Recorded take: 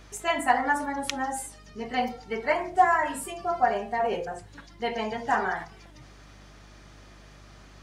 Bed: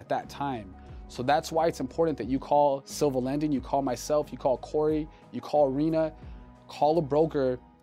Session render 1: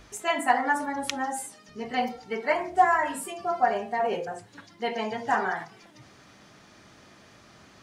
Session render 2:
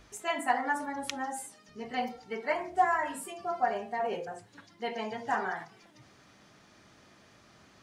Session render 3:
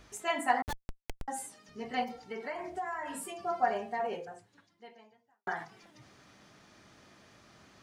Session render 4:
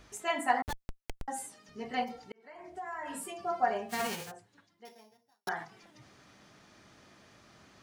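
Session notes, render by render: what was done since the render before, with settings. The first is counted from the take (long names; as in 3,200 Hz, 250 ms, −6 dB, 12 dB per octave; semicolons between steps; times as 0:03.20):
hum removal 50 Hz, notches 3
level −5.5 dB
0:00.62–0:01.28: comparator with hysteresis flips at −26 dBFS; 0:02.03–0:03.29: downward compressor 4 to 1, threshold −35 dBFS; 0:03.86–0:05.47: fade out quadratic
0:02.32–0:03.14: fade in; 0:03.89–0:04.30: spectral envelope flattened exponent 0.3; 0:04.85–0:05.49: samples sorted by size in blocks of 8 samples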